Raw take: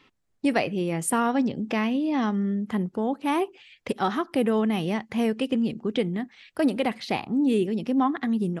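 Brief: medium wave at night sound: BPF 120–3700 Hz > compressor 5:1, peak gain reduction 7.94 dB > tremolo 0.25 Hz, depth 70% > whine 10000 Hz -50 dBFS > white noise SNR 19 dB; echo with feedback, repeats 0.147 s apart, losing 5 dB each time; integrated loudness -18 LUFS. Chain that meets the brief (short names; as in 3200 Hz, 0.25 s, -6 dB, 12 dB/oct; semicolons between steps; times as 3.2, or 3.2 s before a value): BPF 120–3700 Hz; feedback echo 0.147 s, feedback 56%, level -5 dB; compressor 5:1, threshold -25 dBFS; tremolo 0.25 Hz, depth 70%; whine 10000 Hz -50 dBFS; white noise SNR 19 dB; gain +14.5 dB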